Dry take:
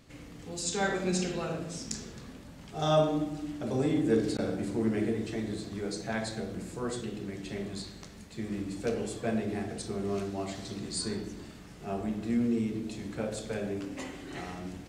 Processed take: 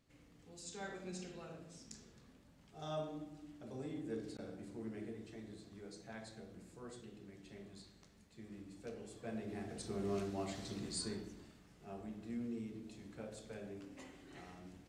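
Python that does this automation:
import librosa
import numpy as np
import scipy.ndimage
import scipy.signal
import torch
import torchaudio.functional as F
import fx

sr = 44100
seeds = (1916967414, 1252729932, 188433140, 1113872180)

y = fx.gain(x, sr, db=fx.line((9.02, -17.0), (10.02, -6.0), (10.85, -6.0), (11.63, -14.5)))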